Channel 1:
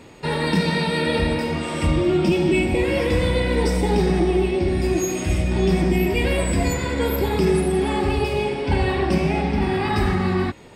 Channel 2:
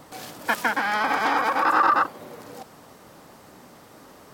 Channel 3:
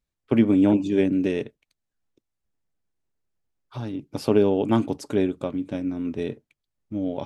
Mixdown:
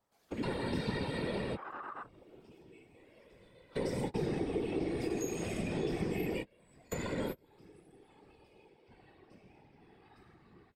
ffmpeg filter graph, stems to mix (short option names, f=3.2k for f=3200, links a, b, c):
-filter_complex "[0:a]highpass=100,adelay=200,volume=2.5dB[a];[1:a]afwtdn=0.0316,volume=-11dB[b];[2:a]bandreject=f=990:w=12,volume=-9.5dB,asplit=2[c][d];[d]apad=whole_len=483291[e];[a][e]sidechaingate=range=-35dB:threshold=-50dB:ratio=16:detection=peak[f];[f][b][c]amix=inputs=3:normalize=0,equalizer=f=250:t=o:w=0.21:g=-13,acrossover=split=170|390[g][h][i];[g]acompressor=threshold=-42dB:ratio=4[j];[h]acompressor=threshold=-31dB:ratio=4[k];[i]acompressor=threshold=-37dB:ratio=4[l];[j][k][l]amix=inputs=3:normalize=0,afftfilt=real='hypot(re,im)*cos(2*PI*random(0))':imag='hypot(re,im)*sin(2*PI*random(1))':win_size=512:overlap=0.75"